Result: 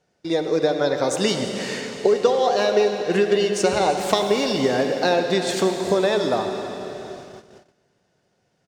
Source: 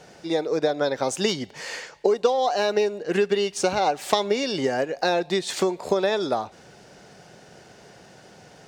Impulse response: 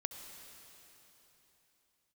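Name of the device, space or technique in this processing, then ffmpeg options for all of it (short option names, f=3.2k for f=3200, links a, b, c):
cave: -filter_complex "[0:a]aecho=1:1:333:0.126[a];[1:a]atrim=start_sample=2205[b];[a][b]afir=irnorm=-1:irlink=0,agate=range=-23dB:threshold=-42dB:ratio=16:detection=peak,lowshelf=f=190:g=4.5,bandreject=f=810:w=17,volume=3.5dB"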